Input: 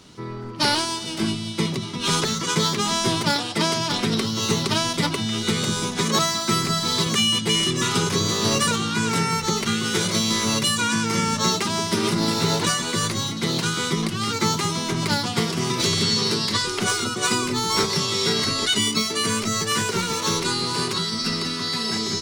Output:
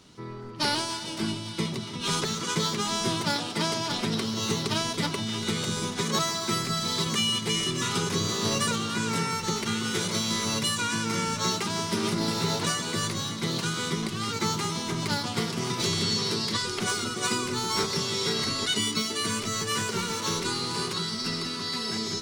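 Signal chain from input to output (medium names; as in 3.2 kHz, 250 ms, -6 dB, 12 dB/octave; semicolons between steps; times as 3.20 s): echo whose repeats swap between lows and highs 143 ms, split 840 Hz, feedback 81%, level -12 dB; trim -6 dB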